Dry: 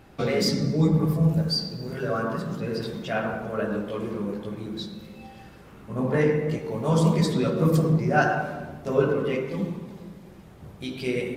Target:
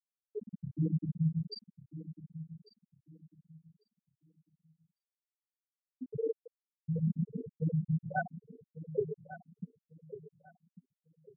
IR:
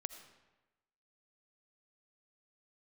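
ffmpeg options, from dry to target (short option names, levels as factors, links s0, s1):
-filter_complex "[0:a]afftfilt=real='re*gte(hypot(re,im),0.708)':imag='im*gte(hypot(re,im),0.708)':win_size=1024:overlap=0.75,asplit=2[s0][s1];[s1]adelay=1147,lowpass=f=2600:p=1,volume=0.2,asplit=2[s2][s3];[s3]adelay=1147,lowpass=f=2600:p=1,volume=0.26,asplit=2[s4][s5];[s5]adelay=1147,lowpass=f=2600:p=1,volume=0.26[s6];[s0][s2][s4][s6]amix=inputs=4:normalize=0,volume=0.355"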